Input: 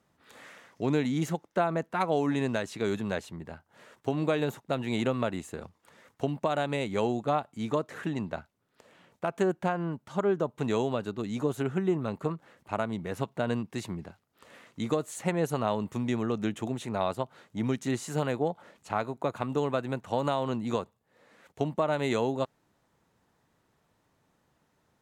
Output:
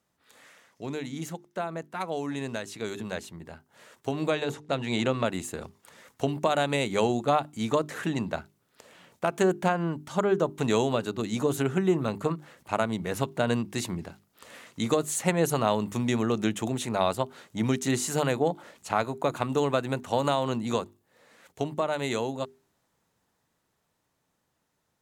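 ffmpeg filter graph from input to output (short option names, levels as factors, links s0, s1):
-filter_complex "[0:a]asettb=1/sr,asplit=3[s0][s1][s2];[s0]atrim=end=4.304[s3];[s1]atrim=start=4.3:end=5.26,asetpts=PTS-STARTPTS,afade=t=in:d=0.004:c=qsin,afade=t=out:st=0.956:d=0.004:c=qsin,lowpass=6900,bandreject=f=50:t=h:w=6,bandreject=f=100:t=h:w=6,bandreject=f=150:t=h:w=6,bandreject=f=200:t=h:w=6,bandreject=f=250:t=h:w=6,bandreject=f=300:t=h:w=6,bandreject=f=350:t=h:w=6,bandreject=f=400:t=h:w=6,bandreject=f=450:t=h:w=6[s4];[s2]atrim=start=5.256[s5];[s3][s4]acrossfade=d=0.004:c1=hsin:c2=qsin[s6];[s6][s5]acrossfade=d=0.004:c1=qsin:c2=hsin,highshelf=f=3800:g=8.5,bandreject=f=50:t=h:w=6,bandreject=f=100:t=h:w=6,bandreject=f=150:t=h:w=6,bandreject=f=200:t=h:w=6,bandreject=f=250:t=h:w=6,bandreject=f=300:t=h:w=6,bandreject=f=350:t=h:w=6,bandreject=f=400:t=h:w=6,dynaudnorm=f=370:g=21:m=3.76,volume=0.473"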